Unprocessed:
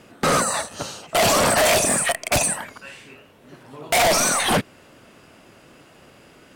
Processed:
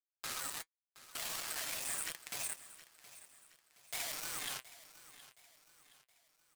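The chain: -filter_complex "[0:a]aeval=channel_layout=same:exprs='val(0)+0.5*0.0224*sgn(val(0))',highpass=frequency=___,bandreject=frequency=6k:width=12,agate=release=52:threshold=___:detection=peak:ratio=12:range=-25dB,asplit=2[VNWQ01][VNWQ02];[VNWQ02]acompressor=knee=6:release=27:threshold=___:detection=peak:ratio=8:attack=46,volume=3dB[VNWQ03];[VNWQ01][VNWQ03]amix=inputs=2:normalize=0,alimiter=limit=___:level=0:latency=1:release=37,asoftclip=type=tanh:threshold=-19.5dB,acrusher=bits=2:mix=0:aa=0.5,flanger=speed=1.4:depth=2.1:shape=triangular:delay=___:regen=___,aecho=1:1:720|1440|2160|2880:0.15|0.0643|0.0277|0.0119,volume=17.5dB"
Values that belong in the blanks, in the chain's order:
1.3k, -31dB, -31dB, -13dB, 5.8, 55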